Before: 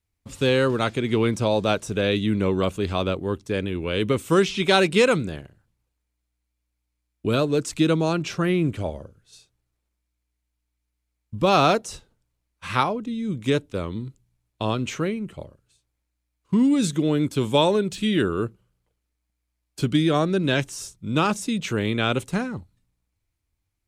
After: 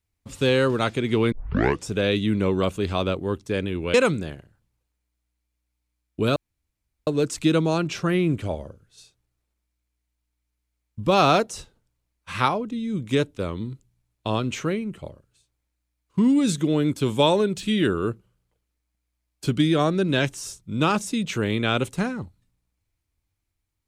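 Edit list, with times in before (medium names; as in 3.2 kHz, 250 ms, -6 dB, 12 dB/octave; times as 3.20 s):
1.32 s: tape start 0.57 s
3.94–5.00 s: delete
7.42 s: insert room tone 0.71 s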